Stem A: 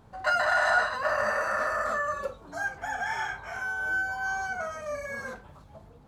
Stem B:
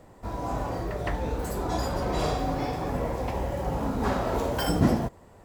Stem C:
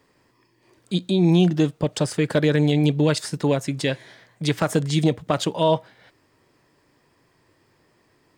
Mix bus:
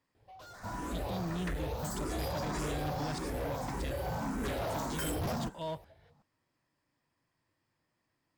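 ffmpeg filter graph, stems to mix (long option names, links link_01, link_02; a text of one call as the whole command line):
ffmpeg -i stem1.wav -i stem2.wav -i stem3.wav -filter_complex "[0:a]asoftclip=type=hard:threshold=-39.5dB,asplit=2[link_01][link_02];[link_02]afreqshift=1.4[link_03];[link_01][link_03]amix=inputs=2:normalize=1,adelay=150,volume=-9.5dB[link_04];[1:a]highshelf=frequency=6000:gain=9.5,asplit=2[link_05][link_06];[link_06]afreqshift=1.7[link_07];[link_05][link_07]amix=inputs=2:normalize=1,adelay=400,volume=-3dB[link_08];[2:a]equalizer=frequency=410:width_type=o:width=0.45:gain=-10,volume=-17.5dB[link_09];[link_04][link_08][link_09]amix=inputs=3:normalize=0,asoftclip=type=hard:threshold=-31.5dB" out.wav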